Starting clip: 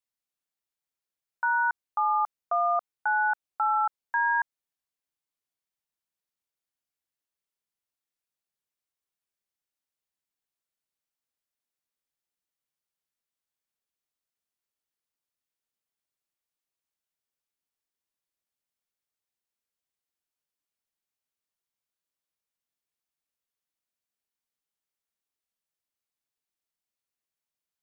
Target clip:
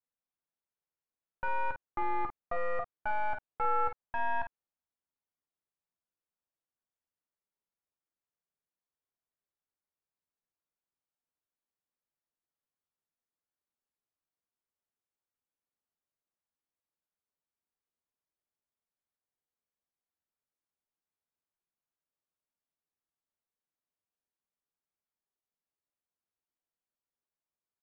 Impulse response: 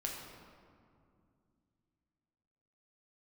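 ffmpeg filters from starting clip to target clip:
-filter_complex "[0:a]aeval=exprs='clip(val(0),-1,0.0158)':c=same,lowpass=1400,asplit=2[s0][s1];[s1]aecho=0:1:12|41|51:0.422|0.266|0.376[s2];[s0][s2]amix=inputs=2:normalize=0,volume=0.75"

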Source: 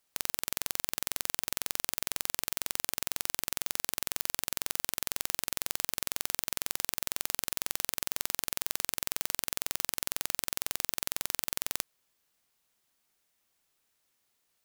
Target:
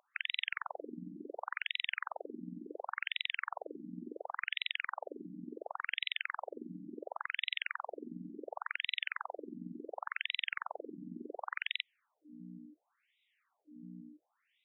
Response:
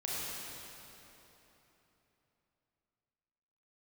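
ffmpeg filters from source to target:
-af "highpass=f=160:w=0.5412,highpass=f=160:w=1.3066,aeval=exprs='val(0)+0.00447*(sin(2*PI*60*n/s)+sin(2*PI*2*60*n/s)/2+sin(2*PI*3*60*n/s)/3+sin(2*PI*4*60*n/s)/4+sin(2*PI*5*60*n/s)/5)':c=same,afftfilt=real='re*between(b*sr/1024,220*pow(2800/220,0.5+0.5*sin(2*PI*0.7*pts/sr))/1.41,220*pow(2800/220,0.5+0.5*sin(2*PI*0.7*pts/sr))*1.41)':imag='im*between(b*sr/1024,220*pow(2800/220,0.5+0.5*sin(2*PI*0.7*pts/sr))/1.41,220*pow(2800/220,0.5+0.5*sin(2*PI*0.7*pts/sr))*1.41)':win_size=1024:overlap=0.75,volume=2.51"

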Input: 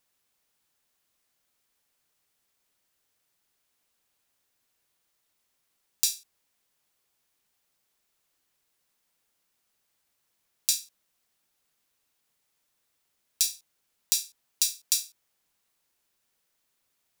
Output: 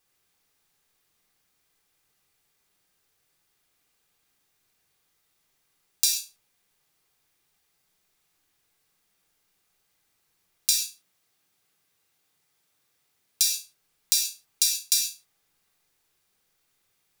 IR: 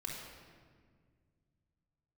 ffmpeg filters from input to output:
-filter_complex "[0:a]asettb=1/sr,asplit=3[s0][s1][s2];[s0]atrim=end=10.704[s3];[s1]atrim=start=10.7:end=13.53,asetpts=PTS-STARTPTS,afade=t=in:d=0.004:c=qsin,afade=t=out:st=2.826:d=0.004:c=qsin,highpass=81[s4];[s2]atrim=start=13.526[s5];[s3][s4]acrossfade=d=0.004:c1=hsin:c2=qsin[s6];[s6][s5]acrossfade=d=0.004:c1=qsin:c2=hsin[s7];[1:a]atrim=start_sample=2205,atrim=end_sample=6174[s8];[s7][s8]afir=irnorm=-1:irlink=0,volume=1.88"

